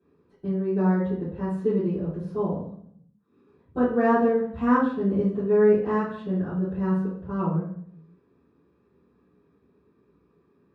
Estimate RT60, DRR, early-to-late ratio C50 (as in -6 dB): 0.60 s, -16.0 dB, 3.5 dB